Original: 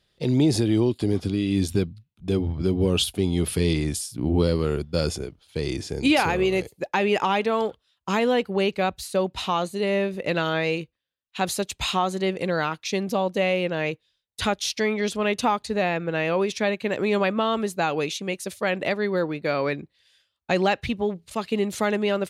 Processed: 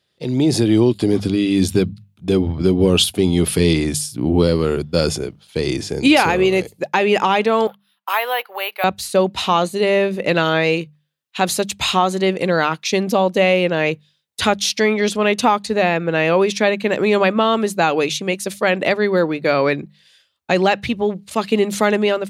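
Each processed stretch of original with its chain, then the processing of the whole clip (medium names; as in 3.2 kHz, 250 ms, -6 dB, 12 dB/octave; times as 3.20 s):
7.67–8.84 s: high-pass 720 Hz 24 dB/octave + distance through air 180 m + careless resampling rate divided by 3×, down none, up hold
whole clip: high-pass 97 Hz; level rider gain up to 10 dB; hum notches 50/100/150/200 Hz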